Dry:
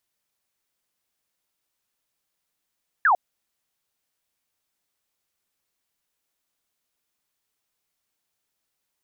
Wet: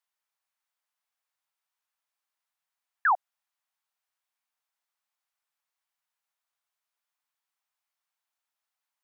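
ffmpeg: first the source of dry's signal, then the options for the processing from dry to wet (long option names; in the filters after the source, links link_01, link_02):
-f lavfi -i "aevalsrc='0.188*clip(t/0.002,0,1)*clip((0.1-t)/0.002,0,1)*sin(2*PI*1800*0.1/log(670/1800)*(exp(log(670/1800)*t/0.1)-1))':duration=0.1:sample_rate=44100"
-af "highpass=frequency=780:width=0.5412,highpass=frequency=780:width=1.3066,highshelf=frequency=2000:gain=-10.5"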